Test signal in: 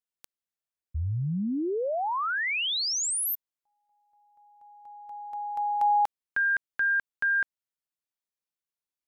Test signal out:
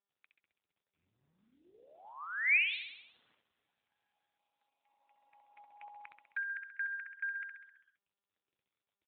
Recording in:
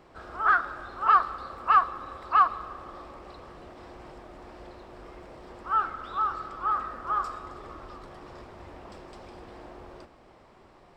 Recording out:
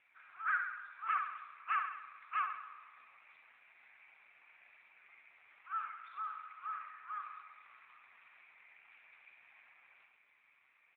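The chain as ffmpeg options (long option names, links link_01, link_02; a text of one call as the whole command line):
ffmpeg -i in.wav -filter_complex "[0:a]highpass=frequency=2400:width_type=q:width=6.5,equalizer=frequency=3100:width_type=o:width=0.82:gain=-14.5,aecho=1:1:66|132|198|264|330|396|462|528:0.473|0.284|0.17|0.102|0.0613|0.0368|0.0221|0.0132,asplit=2[link_01][link_02];[link_02]acrusher=bits=5:mode=log:mix=0:aa=0.000001,volume=-3dB[link_03];[link_01][link_03]amix=inputs=2:normalize=0,volume=-8.5dB" -ar 8000 -c:a libopencore_amrnb -b:a 7400 out.amr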